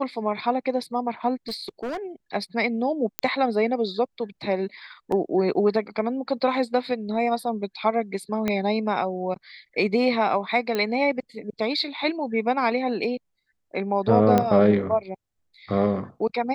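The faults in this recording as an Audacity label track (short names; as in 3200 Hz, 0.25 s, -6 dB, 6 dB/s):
1.480000	1.970000	clipped -26.5 dBFS
3.190000	3.190000	pop -6 dBFS
5.120000	5.120000	gap 3.1 ms
8.480000	8.480000	pop -11 dBFS
10.750000	10.750000	pop -13 dBFS
14.380000	14.380000	pop -8 dBFS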